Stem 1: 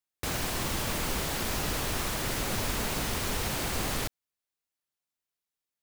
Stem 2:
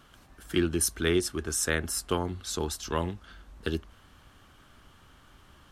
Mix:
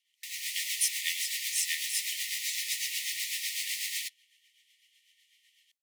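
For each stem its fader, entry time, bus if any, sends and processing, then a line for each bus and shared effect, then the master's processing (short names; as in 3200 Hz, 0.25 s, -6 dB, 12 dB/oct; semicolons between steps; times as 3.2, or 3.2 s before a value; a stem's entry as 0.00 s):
+2.0 dB, 0.00 s, no send, flange 1.5 Hz, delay 7.2 ms, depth 8.4 ms, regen -19%; auto duck -6 dB, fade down 0.90 s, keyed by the second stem
-11.0 dB, 0.00 s, no send, dry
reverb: off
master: AGC gain up to 11.5 dB; rotary speaker horn 8 Hz; brick-wall FIR high-pass 1800 Hz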